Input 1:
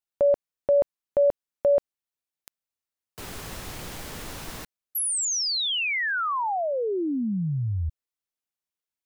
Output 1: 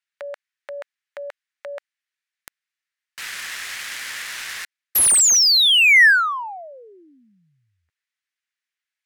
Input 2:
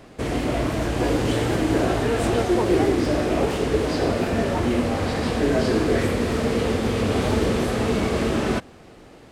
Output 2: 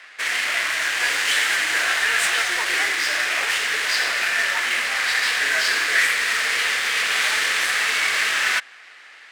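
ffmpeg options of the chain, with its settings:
ffmpeg -i in.wav -af "highpass=frequency=1800:width_type=q:width=2.8,aemphasis=mode=production:type=50kf,adynamicsmooth=sensitivity=7:basefreq=4100,volume=6dB" out.wav

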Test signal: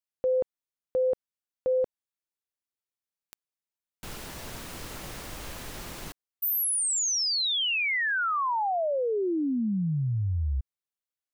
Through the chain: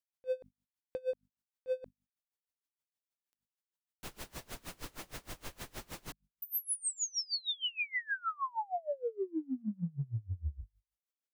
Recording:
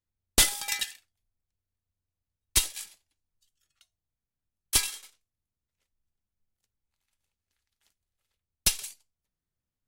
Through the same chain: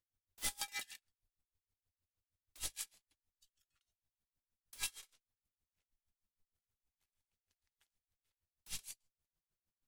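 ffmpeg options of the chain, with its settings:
ffmpeg -i in.wav -af "bandreject=frequency=50:width_type=h:width=6,bandreject=frequency=100:width_type=h:width=6,bandreject=frequency=150:width_type=h:width=6,bandreject=frequency=200:width_type=h:width=6,bandreject=frequency=250:width_type=h:width=6,acompressor=threshold=-36dB:ratio=1.5:attack=0.57:release=23:knee=6:detection=rms,aeval=exprs='0.0473*(abs(mod(val(0)/0.0473+3,4)-2)-1)':channel_layout=same,aeval=exprs='val(0)*pow(10,-28*(0.5-0.5*cos(2*PI*6.4*n/s))/20)':channel_layout=same" out.wav

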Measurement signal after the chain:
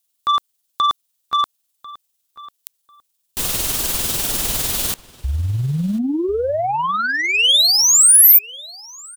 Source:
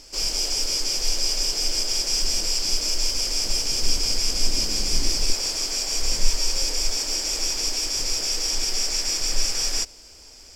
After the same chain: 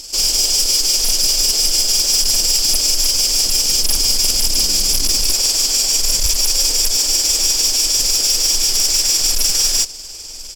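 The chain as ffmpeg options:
ffmpeg -i in.wav -filter_complex "[0:a]tremolo=f=20:d=0.41,aeval=exprs='0.501*sin(PI/2*3.16*val(0)/0.501)':channel_layout=same,aexciter=amount=2.4:drive=7.3:freq=2900,asplit=2[link_01][link_02];[link_02]adelay=1045,lowpass=frequency=3400:poles=1,volume=-18.5dB,asplit=2[link_03][link_04];[link_04]adelay=1045,lowpass=frequency=3400:poles=1,volume=0.2[link_05];[link_03][link_05]amix=inputs=2:normalize=0[link_06];[link_01][link_06]amix=inputs=2:normalize=0,volume=-7.5dB" out.wav

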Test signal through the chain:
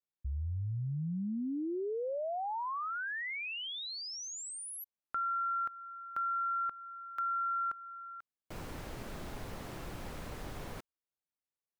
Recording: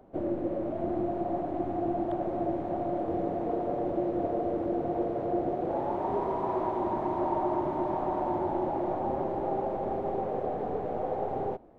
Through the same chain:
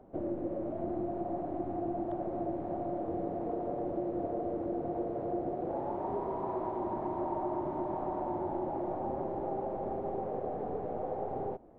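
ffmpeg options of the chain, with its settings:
ffmpeg -i in.wav -af "highshelf=frequency=2300:gain=-11.5,acompressor=threshold=-39dB:ratio=1.5" out.wav

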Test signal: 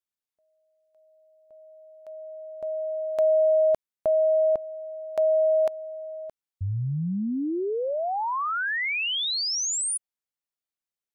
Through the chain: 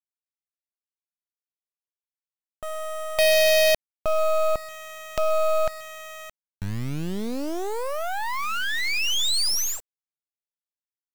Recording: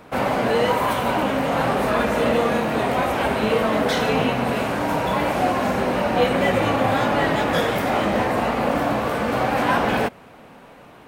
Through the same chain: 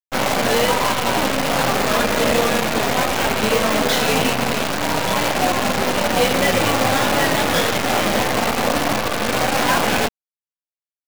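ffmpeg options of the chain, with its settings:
ffmpeg -i in.wav -filter_complex "[0:a]acrossover=split=5900[link_01][link_02];[link_02]acompressor=threshold=-53dB:ratio=16:release=427[link_03];[link_01][link_03]amix=inputs=2:normalize=0,crystalizer=i=2:c=0,aresample=16000,aeval=exprs='sgn(val(0))*max(abs(val(0))-0.0126,0)':channel_layout=same,aresample=44100,highshelf=frequency=2400:gain=3,asplit=2[link_04][link_05];[link_05]adelay=130,highpass=300,lowpass=3400,asoftclip=type=hard:threshold=-14.5dB,volume=-29dB[link_06];[link_04][link_06]amix=inputs=2:normalize=0,acrusher=bits=4:dc=4:mix=0:aa=0.000001,asoftclip=type=tanh:threshold=-15dB,volume=5dB" out.wav

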